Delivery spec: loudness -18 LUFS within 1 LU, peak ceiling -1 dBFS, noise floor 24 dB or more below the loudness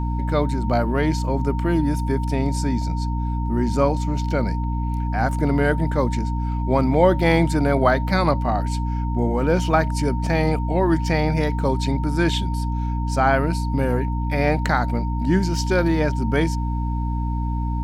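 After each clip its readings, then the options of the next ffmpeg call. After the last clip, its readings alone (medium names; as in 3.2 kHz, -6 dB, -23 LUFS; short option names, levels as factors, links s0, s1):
hum 60 Hz; highest harmonic 300 Hz; hum level -21 dBFS; steady tone 920 Hz; tone level -32 dBFS; loudness -21.5 LUFS; peak level -4.0 dBFS; loudness target -18.0 LUFS
-> -af "bandreject=f=60:t=h:w=6,bandreject=f=120:t=h:w=6,bandreject=f=180:t=h:w=6,bandreject=f=240:t=h:w=6,bandreject=f=300:t=h:w=6"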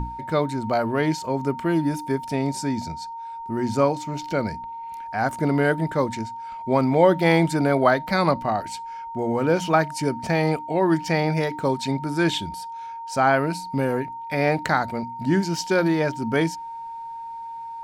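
hum not found; steady tone 920 Hz; tone level -32 dBFS
-> -af "bandreject=f=920:w=30"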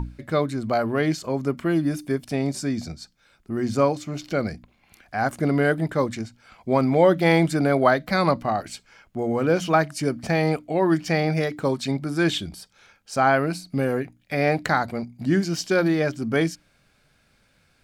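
steady tone not found; loudness -23.5 LUFS; peak level -5.0 dBFS; loudness target -18.0 LUFS
-> -af "volume=1.88,alimiter=limit=0.891:level=0:latency=1"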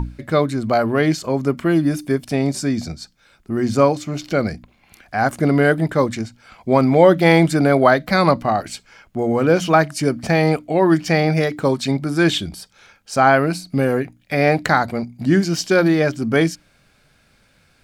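loudness -18.0 LUFS; peak level -1.0 dBFS; noise floor -58 dBFS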